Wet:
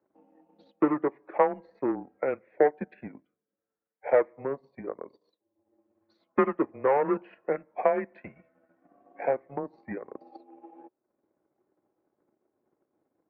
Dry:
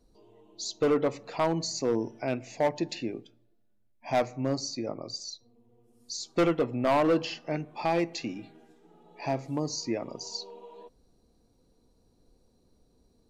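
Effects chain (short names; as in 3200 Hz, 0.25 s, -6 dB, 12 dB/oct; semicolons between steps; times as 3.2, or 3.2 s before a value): transient shaper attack +9 dB, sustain -8 dB; mistuned SSB -140 Hz 480–2100 Hz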